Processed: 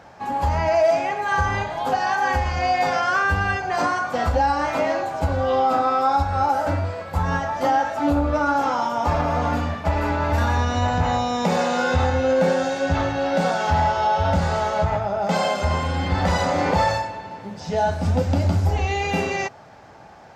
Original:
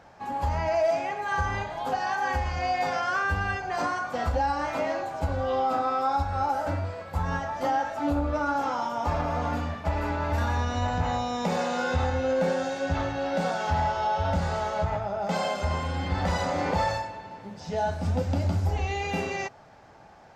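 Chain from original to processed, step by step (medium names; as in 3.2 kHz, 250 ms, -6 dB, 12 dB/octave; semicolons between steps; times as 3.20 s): high-pass 52 Hz; trim +6.5 dB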